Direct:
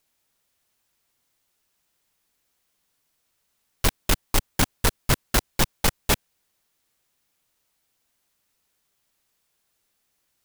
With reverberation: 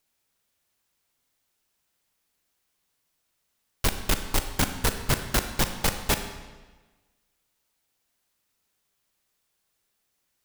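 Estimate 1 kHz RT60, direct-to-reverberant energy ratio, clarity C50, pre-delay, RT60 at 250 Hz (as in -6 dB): 1.3 s, 7.5 dB, 8.5 dB, 35 ms, 1.3 s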